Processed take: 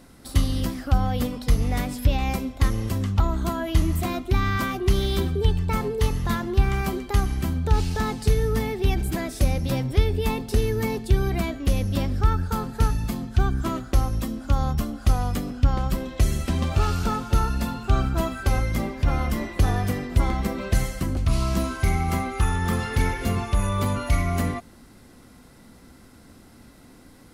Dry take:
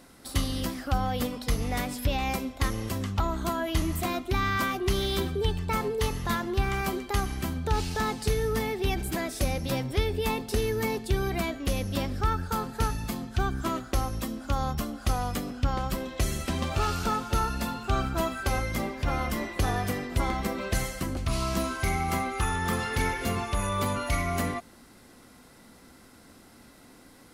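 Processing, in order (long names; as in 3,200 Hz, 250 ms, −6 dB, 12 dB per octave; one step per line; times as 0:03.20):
low-shelf EQ 230 Hz +9 dB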